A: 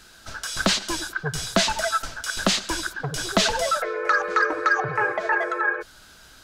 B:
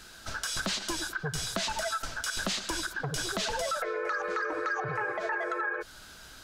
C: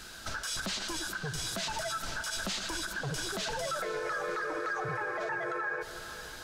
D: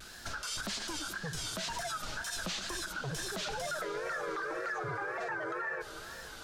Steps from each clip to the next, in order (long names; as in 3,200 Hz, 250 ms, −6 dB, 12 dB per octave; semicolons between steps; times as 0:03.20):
brickwall limiter −17.5 dBFS, peak gain reduction 10.5 dB; downward compressor 2.5 to 1, threshold −31 dBFS, peak gain reduction 6.5 dB
brickwall limiter −30 dBFS, peak gain reduction 11 dB; feedback delay with all-pass diffusion 487 ms, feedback 51%, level −12.5 dB; level +3 dB
tape wow and flutter 130 cents; level −2.5 dB